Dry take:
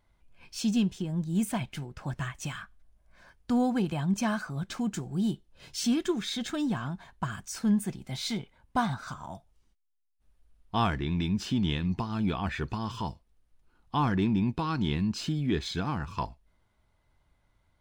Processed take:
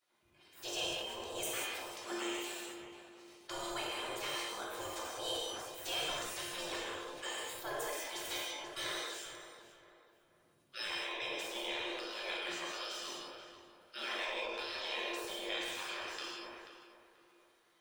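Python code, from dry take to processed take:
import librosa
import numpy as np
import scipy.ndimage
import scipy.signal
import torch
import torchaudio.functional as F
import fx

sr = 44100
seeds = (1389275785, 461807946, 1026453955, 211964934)

p1 = fx.octave_divider(x, sr, octaves=2, level_db=1.0)
p2 = fx.spec_gate(p1, sr, threshold_db=-25, keep='weak')
p3 = fx.rider(p2, sr, range_db=10, speed_s=0.5)
p4 = p2 + (p3 * librosa.db_to_amplitude(3.0))
p5 = fx.comb_fb(p4, sr, f0_hz=350.0, decay_s=0.34, harmonics='odd', damping=0.0, mix_pct=80)
p6 = fx.echo_filtered(p5, sr, ms=485, feedback_pct=42, hz=2100.0, wet_db=-11)
p7 = fx.rev_gated(p6, sr, seeds[0], gate_ms=220, shape='flat', drr_db=-3.0)
p8 = fx.sustainer(p7, sr, db_per_s=27.0)
y = p8 * librosa.db_to_amplitude(6.5)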